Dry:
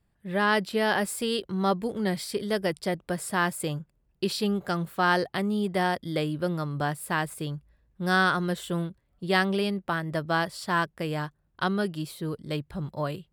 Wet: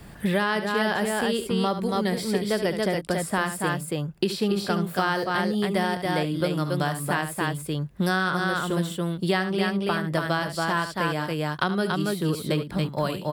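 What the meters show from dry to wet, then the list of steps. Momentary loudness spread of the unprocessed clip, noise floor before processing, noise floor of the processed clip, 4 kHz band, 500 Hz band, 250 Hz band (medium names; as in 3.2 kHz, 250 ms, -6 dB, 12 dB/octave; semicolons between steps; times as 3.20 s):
10 LU, -71 dBFS, -40 dBFS, +2.5 dB, +3.0 dB, +3.5 dB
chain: on a send: loudspeakers at several distances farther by 24 m -11 dB, 96 m -4 dB; on the sum: three bands compressed up and down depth 100%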